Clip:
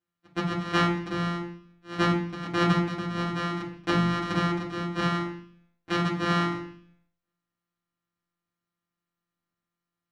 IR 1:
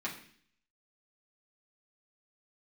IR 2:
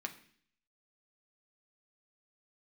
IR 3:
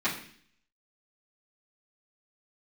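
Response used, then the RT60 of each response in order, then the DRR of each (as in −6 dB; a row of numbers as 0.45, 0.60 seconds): 1; 0.55, 0.55, 0.55 seconds; −5.5, 3.5, −12.0 decibels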